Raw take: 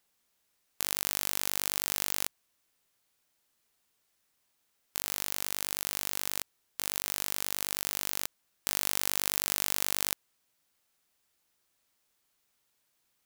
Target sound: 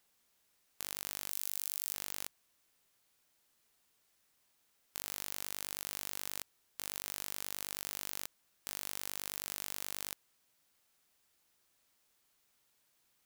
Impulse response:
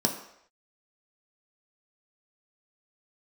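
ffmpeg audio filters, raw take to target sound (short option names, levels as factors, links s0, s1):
-filter_complex "[0:a]asettb=1/sr,asplit=3[s0][s1][s2];[s0]atrim=end=1.304[s3];[s1]atrim=start=1.3:end=1.94,asetpts=PTS-STARTPTS,afade=t=in:d=0.004:c=qsin,afade=t=out:st=0.636:d=0.004:c=qsin,highshelf=f=6600:g=6[s4];[s2]atrim=start=1.936[s5];[s3][s4]acrossfade=d=0.004:c1=hsin:c2=qsin[s6];[s6][s5]acrossfade=d=0.004:c1=qsin:c2=hsin,asoftclip=type=tanh:threshold=0.2,volume=1.12"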